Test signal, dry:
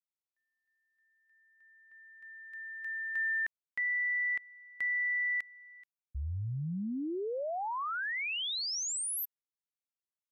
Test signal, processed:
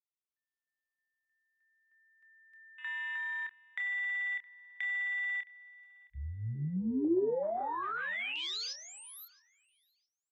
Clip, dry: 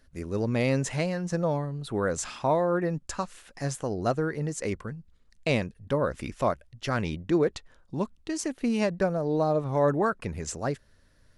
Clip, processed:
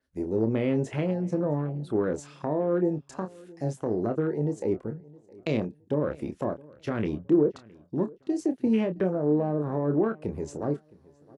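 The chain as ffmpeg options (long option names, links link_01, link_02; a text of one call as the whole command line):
ffmpeg -i in.wav -filter_complex "[0:a]highpass=frequency=210:poles=1,afwtdn=0.0178,equalizer=frequency=350:width_type=o:width=0.5:gain=5,asplit=2[link_01][link_02];[link_02]alimiter=limit=-19dB:level=0:latency=1,volume=0dB[link_03];[link_01][link_03]amix=inputs=2:normalize=0,acrossover=split=450[link_04][link_05];[link_05]acompressor=threshold=-34dB:ratio=10:attack=5.9:release=43:knee=2.83:detection=peak[link_06];[link_04][link_06]amix=inputs=2:normalize=0,asplit=2[link_07][link_08];[link_08]adelay=27,volume=-8dB[link_09];[link_07][link_09]amix=inputs=2:normalize=0,asplit=2[link_10][link_11];[link_11]adelay=665,lowpass=frequency=3600:poles=1,volume=-23dB,asplit=2[link_12][link_13];[link_13]adelay=665,lowpass=frequency=3600:poles=1,volume=0.29[link_14];[link_10][link_12][link_14]amix=inputs=3:normalize=0,adynamicequalizer=threshold=0.00355:dfrequency=5200:dqfactor=0.7:tfrequency=5200:tqfactor=0.7:attack=5:release=100:ratio=0.375:range=2:mode=cutabove:tftype=highshelf,volume=-2dB" out.wav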